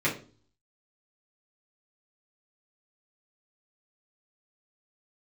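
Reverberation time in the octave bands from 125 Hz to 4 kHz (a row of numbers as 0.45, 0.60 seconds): 0.70, 0.55, 0.45, 0.35, 0.30, 0.35 seconds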